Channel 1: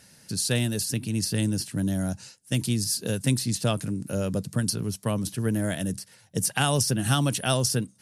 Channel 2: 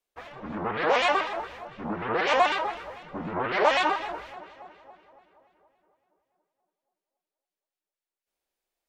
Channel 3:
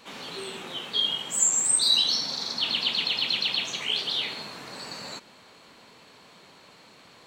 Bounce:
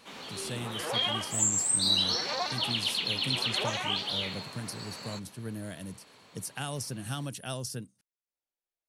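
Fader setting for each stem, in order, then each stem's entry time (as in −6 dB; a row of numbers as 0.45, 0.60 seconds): −12.5, −12.5, −4.5 decibels; 0.00, 0.00, 0.00 seconds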